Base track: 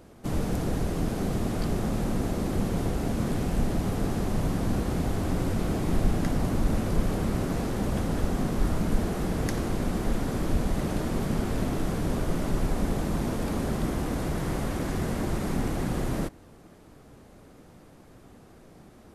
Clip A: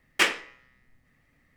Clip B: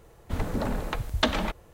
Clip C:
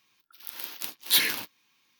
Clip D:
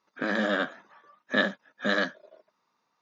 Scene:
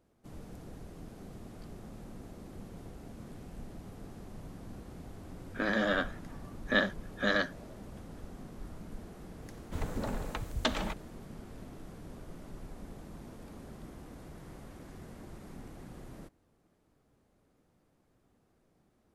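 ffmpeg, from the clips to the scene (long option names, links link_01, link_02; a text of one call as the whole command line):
ffmpeg -i bed.wav -i cue0.wav -i cue1.wav -i cue2.wav -i cue3.wav -filter_complex "[0:a]volume=-19.5dB[link_01];[2:a]equalizer=frequency=7300:width_type=o:width=0.66:gain=4.5[link_02];[4:a]atrim=end=3.01,asetpts=PTS-STARTPTS,volume=-3dB,afade=type=in:duration=0.004:curve=hsin,afade=type=out:start_time=3.006:duration=0.004:curve=hsin,adelay=5380[link_03];[link_02]atrim=end=1.73,asetpts=PTS-STARTPTS,volume=-7dB,afade=type=in:duration=0.004:curve=hsin,afade=type=out:start_time=1.726:duration=0.004:curve=hsin,adelay=9420[link_04];[link_01][link_03][link_04]amix=inputs=3:normalize=0" out.wav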